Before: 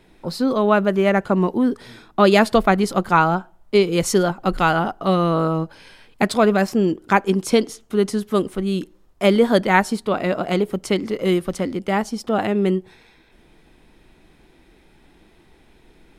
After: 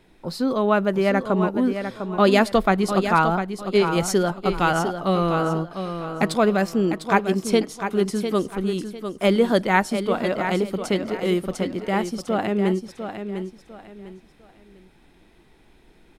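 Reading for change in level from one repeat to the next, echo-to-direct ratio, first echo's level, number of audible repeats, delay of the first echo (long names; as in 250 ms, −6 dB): −11.0 dB, −8.0 dB, −8.5 dB, 3, 701 ms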